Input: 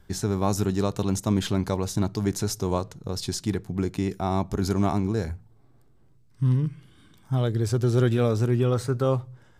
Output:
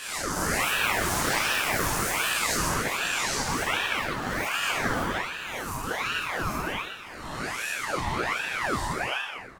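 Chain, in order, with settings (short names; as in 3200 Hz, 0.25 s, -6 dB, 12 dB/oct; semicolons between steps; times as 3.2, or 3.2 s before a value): spectral swells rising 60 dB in 1.68 s; plate-style reverb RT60 1.1 s, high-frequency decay 1×, DRR -5.5 dB; echoes that change speed 0.3 s, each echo +6 st, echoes 3; HPF 420 Hz 12 dB/oct; on a send: frequency-shifting echo 0.12 s, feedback 47%, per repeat +52 Hz, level -10 dB; on the sum: ring modulator with a swept carrier 1300 Hz, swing 65%, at 1.3 Hz; gain -6.5 dB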